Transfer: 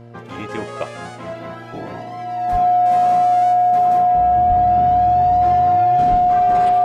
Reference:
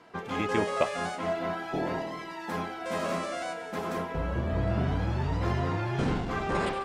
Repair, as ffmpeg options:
-filter_complex "[0:a]bandreject=f=117.6:t=h:w=4,bandreject=f=235.2:t=h:w=4,bandreject=f=352.8:t=h:w=4,bandreject=f=470.4:t=h:w=4,bandreject=f=588:t=h:w=4,bandreject=f=705.6:t=h:w=4,bandreject=f=720:w=30,asplit=3[s0][s1][s2];[s0]afade=t=out:st=2.51:d=0.02[s3];[s1]highpass=f=140:w=0.5412,highpass=f=140:w=1.3066,afade=t=in:st=2.51:d=0.02,afade=t=out:st=2.63:d=0.02[s4];[s2]afade=t=in:st=2.63:d=0.02[s5];[s3][s4][s5]amix=inputs=3:normalize=0,asplit=3[s6][s7][s8];[s6]afade=t=out:st=4.48:d=0.02[s9];[s7]highpass=f=140:w=0.5412,highpass=f=140:w=1.3066,afade=t=in:st=4.48:d=0.02,afade=t=out:st=4.6:d=0.02[s10];[s8]afade=t=in:st=4.6:d=0.02[s11];[s9][s10][s11]amix=inputs=3:normalize=0,asplit=3[s12][s13][s14];[s12]afade=t=out:st=6.1:d=0.02[s15];[s13]highpass=f=140:w=0.5412,highpass=f=140:w=1.3066,afade=t=in:st=6.1:d=0.02,afade=t=out:st=6.22:d=0.02[s16];[s14]afade=t=in:st=6.22:d=0.02[s17];[s15][s16][s17]amix=inputs=3:normalize=0"

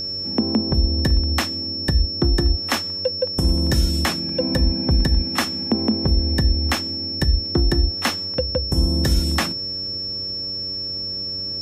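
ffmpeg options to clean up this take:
-af "bandreject=f=95.6:t=h:w=4,bandreject=f=191.2:t=h:w=4,bandreject=f=286.8:t=h:w=4,bandreject=f=382.4:t=h:w=4,bandreject=f=478:t=h:w=4,bandreject=f=573.6:t=h:w=4,bandreject=f=5400:w=30"

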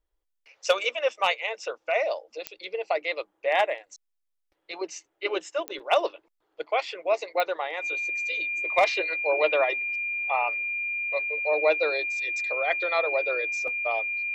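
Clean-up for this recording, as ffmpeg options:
-af "adeclick=t=4,bandreject=f=2400:w=30"

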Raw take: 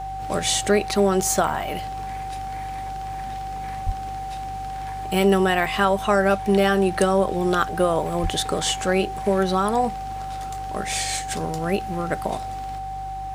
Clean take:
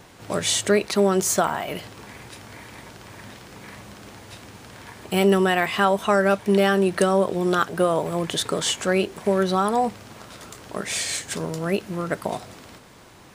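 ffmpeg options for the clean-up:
-filter_complex "[0:a]bandreject=f=48.9:t=h:w=4,bandreject=f=97.8:t=h:w=4,bandreject=f=146.7:t=h:w=4,bandreject=f=770:w=30,asplit=3[s0][s1][s2];[s0]afade=t=out:st=3.85:d=0.02[s3];[s1]highpass=f=140:w=0.5412,highpass=f=140:w=1.3066,afade=t=in:st=3.85:d=0.02,afade=t=out:st=3.97:d=0.02[s4];[s2]afade=t=in:st=3.97:d=0.02[s5];[s3][s4][s5]amix=inputs=3:normalize=0,asplit=3[s6][s7][s8];[s6]afade=t=out:st=8.22:d=0.02[s9];[s7]highpass=f=140:w=0.5412,highpass=f=140:w=1.3066,afade=t=in:st=8.22:d=0.02,afade=t=out:st=8.34:d=0.02[s10];[s8]afade=t=in:st=8.34:d=0.02[s11];[s9][s10][s11]amix=inputs=3:normalize=0"

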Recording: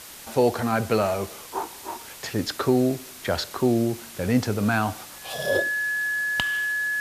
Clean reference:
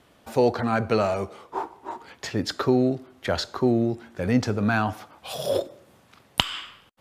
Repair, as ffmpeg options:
-af "bandreject=f=1700:w=30,afwtdn=0.0089,asetnsamples=n=441:p=0,asendcmd='5.69 volume volume 7dB',volume=1"

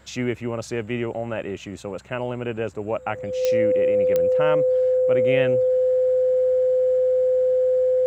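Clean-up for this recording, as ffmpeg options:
-af "adeclick=t=4,bandreject=f=65.9:t=h:w=4,bandreject=f=131.8:t=h:w=4,bandreject=f=197.7:t=h:w=4,bandreject=f=510:w=30"

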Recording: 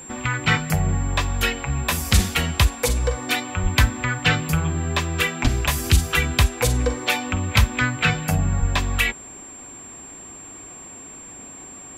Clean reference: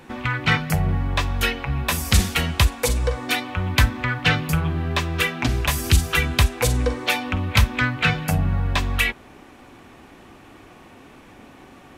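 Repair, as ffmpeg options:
-filter_complex "[0:a]bandreject=f=7400:w=30,asplit=3[s0][s1][s2];[s0]afade=t=out:st=3.62:d=0.02[s3];[s1]highpass=f=140:w=0.5412,highpass=f=140:w=1.3066,afade=t=in:st=3.62:d=0.02,afade=t=out:st=3.74:d=0.02[s4];[s2]afade=t=in:st=3.74:d=0.02[s5];[s3][s4][s5]amix=inputs=3:normalize=0,asplit=3[s6][s7][s8];[s6]afade=t=out:st=5.43:d=0.02[s9];[s7]highpass=f=140:w=0.5412,highpass=f=140:w=1.3066,afade=t=in:st=5.43:d=0.02,afade=t=out:st=5.55:d=0.02[s10];[s8]afade=t=in:st=5.55:d=0.02[s11];[s9][s10][s11]amix=inputs=3:normalize=0,asplit=3[s12][s13][s14];[s12]afade=t=out:st=8.59:d=0.02[s15];[s13]highpass=f=140:w=0.5412,highpass=f=140:w=1.3066,afade=t=in:st=8.59:d=0.02,afade=t=out:st=8.71:d=0.02[s16];[s14]afade=t=in:st=8.71:d=0.02[s17];[s15][s16][s17]amix=inputs=3:normalize=0"

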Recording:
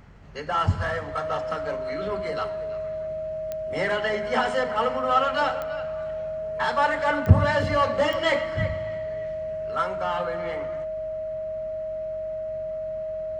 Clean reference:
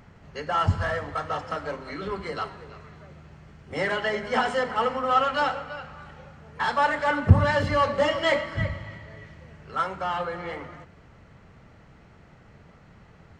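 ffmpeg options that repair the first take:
-af "adeclick=t=4,bandreject=f=46.1:t=h:w=4,bandreject=f=92.2:t=h:w=4,bandreject=f=138.3:t=h:w=4,bandreject=f=630:w=30"

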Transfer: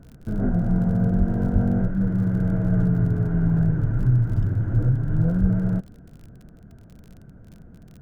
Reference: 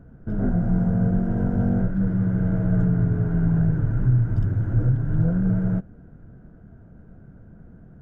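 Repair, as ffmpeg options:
-filter_complex "[0:a]adeclick=t=4,asplit=3[s0][s1][s2];[s0]afade=t=out:st=1.18:d=0.02[s3];[s1]highpass=f=140:w=0.5412,highpass=f=140:w=1.3066,afade=t=in:st=1.18:d=0.02,afade=t=out:st=1.3:d=0.02[s4];[s2]afade=t=in:st=1.3:d=0.02[s5];[s3][s4][s5]amix=inputs=3:normalize=0,asplit=3[s6][s7][s8];[s6]afade=t=out:st=1.52:d=0.02[s9];[s7]highpass=f=140:w=0.5412,highpass=f=140:w=1.3066,afade=t=in:st=1.52:d=0.02,afade=t=out:st=1.64:d=0.02[s10];[s8]afade=t=in:st=1.64:d=0.02[s11];[s9][s10][s11]amix=inputs=3:normalize=0,asplit=3[s12][s13][s14];[s12]afade=t=out:st=5.4:d=0.02[s15];[s13]highpass=f=140:w=0.5412,highpass=f=140:w=1.3066,afade=t=in:st=5.4:d=0.02,afade=t=out:st=5.52:d=0.02[s16];[s14]afade=t=in:st=5.52:d=0.02[s17];[s15][s16][s17]amix=inputs=3:normalize=0"

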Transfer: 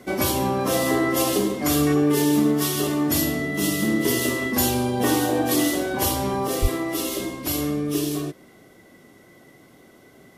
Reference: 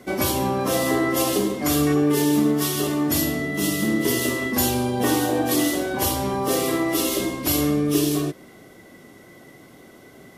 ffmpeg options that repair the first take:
-filter_complex "[0:a]asplit=3[s0][s1][s2];[s0]afade=t=out:st=6.61:d=0.02[s3];[s1]highpass=f=140:w=0.5412,highpass=f=140:w=1.3066,afade=t=in:st=6.61:d=0.02,afade=t=out:st=6.73:d=0.02[s4];[s2]afade=t=in:st=6.73:d=0.02[s5];[s3][s4][s5]amix=inputs=3:normalize=0,asetnsamples=n=441:p=0,asendcmd='6.47 volume volume 4dB',volume=1"

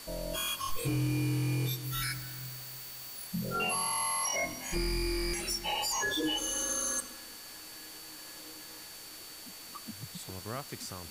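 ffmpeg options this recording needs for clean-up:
-af "adeclick=t=4,bandreject=f=4500:w=30,afftdn=nr=30:nf=-47"

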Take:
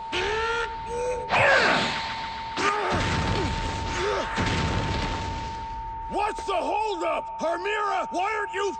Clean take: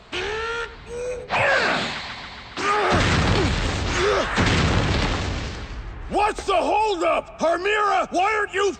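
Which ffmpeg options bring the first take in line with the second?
-af "bandreject=f=900:w=30,asetnsamples=n=441:p=0,asendcmd='2.69 volume volume 6.5dB',volume=1"

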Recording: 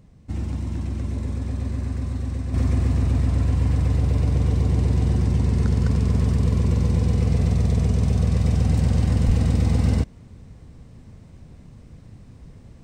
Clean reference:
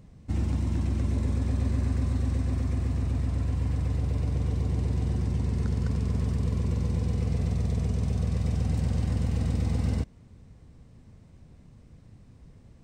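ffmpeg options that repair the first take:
-filter_complex "[0:a]asplit=3[s0][s1][s2];[s0]afade=t=out:st=9.26:d=0.02[s3];[s1]highpass=f=140:w=0.5412,highpass=f=140:w=1.3066,afade=t=in:st=9.26:d=0.02,afade=t=out:st=9.38:d=0.02[s4];[s2]afade=t=in:st=9.38:d=0.02[s5];[s3][s4][s5]amix=inputs=3:normalize=0,asetnsamples=n=441:p=0,asendcmd='2.54 volume volume -7.5dB',volume=1"

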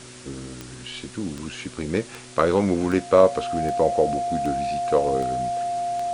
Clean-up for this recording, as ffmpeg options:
-af "adeclick=t=4,bandreject=f=124.3:t=h:w=4,bandreject=f=248.6:t=h:w=4,bandreject=f=372.9:t=h:w=4,bandreject=f=700:w=30,afwtdn=0.0079"

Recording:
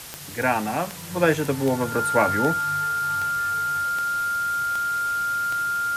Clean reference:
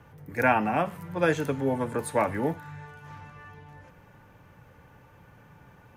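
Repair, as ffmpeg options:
-af "adeclick=t=4,bandreject=f=1400:w=30,afwtdn=0.013,asetnsamples=n=441:p=0,asendcmd='1.11 volume volume -4.5dB',volume=1"

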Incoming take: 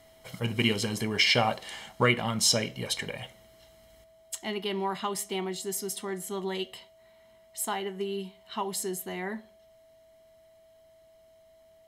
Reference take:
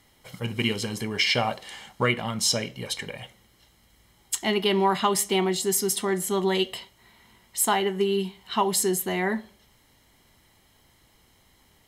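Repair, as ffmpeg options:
-af "bandreject=f=650:w=30,asetnsamples=n=441:p=0,asendcmd='4.04 volume volume 9dB',volume=1"

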